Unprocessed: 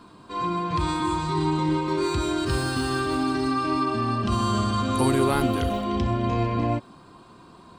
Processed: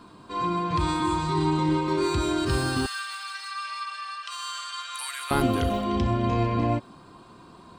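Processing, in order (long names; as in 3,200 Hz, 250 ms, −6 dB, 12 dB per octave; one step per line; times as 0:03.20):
0:02.86–0:05.31: high-pass filter 1,400 Hz 24 dB per octave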